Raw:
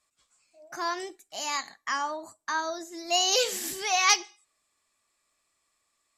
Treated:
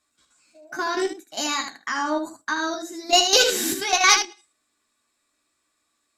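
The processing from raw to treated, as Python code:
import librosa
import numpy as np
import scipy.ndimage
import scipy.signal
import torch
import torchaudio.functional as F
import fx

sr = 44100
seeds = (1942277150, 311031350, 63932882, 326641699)

p1 = fx.level_steps(x, sr, step_db=12)
p2 = fx.small_body(p1, sr, hz=(280.0, 1500.0, 3800.0), ring_ms=30, db=11)
p3 = p2 + fx.room_early_taps(p2, sr, ms=(13, 77), db=(-5.0, -7.0), dry=0)
p4 = fx.cheby_harmonics(p3, sr, harmonics=(4,), levels_db=(-27,), full_scale_db=-11.0)
y = F.gain(torch.from_numpy(p4), 8.0).numpy()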